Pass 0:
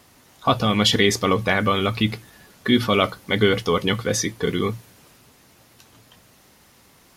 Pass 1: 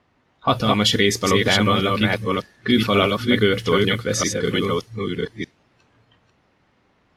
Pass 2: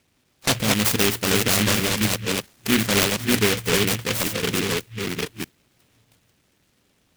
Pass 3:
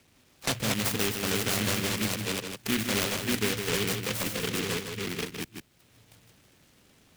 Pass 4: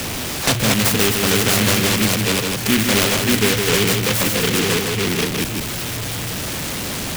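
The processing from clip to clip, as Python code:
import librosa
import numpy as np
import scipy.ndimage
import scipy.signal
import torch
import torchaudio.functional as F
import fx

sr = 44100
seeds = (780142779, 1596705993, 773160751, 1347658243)

y1 = fx.reverse_delay(x, sr, ms=605, wet_db=-2.5)
y1 = fx.noise_reduce_blind(y1, sr, reduce_db=8)
y1 = fx.env_lowpass(y1, sr, base_hz=2500.0, full_db=-16.0)
y2 = fx.noise_mod_delay(y1, sr, seeds[0], noise_hz=2300.0, depth_ms=0.29)
y2 = y2 * librosa.db_to_amplitude(-2.5)
y3 = y2 + 10.0 ** (-7.5 / 20.0) * np.pad(y2, (int(157 * sr / 1000.0), 0))[:len(y2)]
y3 = fx.band_squash(y3, sr, depth_pct=40)
y3 = y3 * librosa.db_to_amplitude(-8.5)
y4 = y3 + 0.5 * 10.0 ** (-28.5 / 20.0) * np.sign(y3)
y4 = y4 * librosa.db_to_amplitude(9.0)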